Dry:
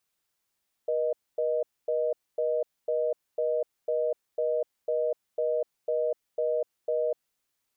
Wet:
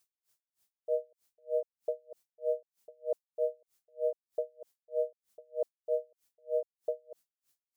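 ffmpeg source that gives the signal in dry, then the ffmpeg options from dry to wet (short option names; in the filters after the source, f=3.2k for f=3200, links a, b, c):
-f lavfi -i "aevalsrc='0.0447*(sin(2*PI*480*t)+sin(2*PI*620*t))*clip(min(mod(t,0.5),0.25-mod(t,0.5))/0.005,0,1)':d=6.46:s=44100"
-af "bass=f=250:g=1,treble=f=4k:g=8,aeval=exprs='val(0)*pow(10,-39*(0.5-0.5*cos(2*PI*3.2*n/s))/20)':c=same"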